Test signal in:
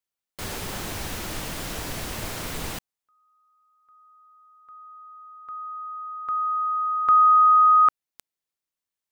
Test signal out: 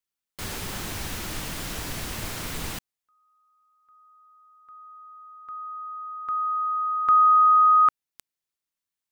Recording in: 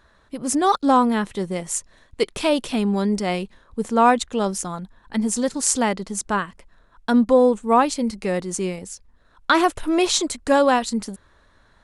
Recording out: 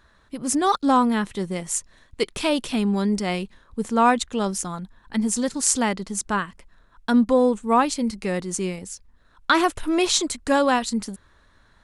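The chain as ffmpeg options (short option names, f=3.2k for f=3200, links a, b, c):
-af "equalizer=f=580:w=1:g=-4"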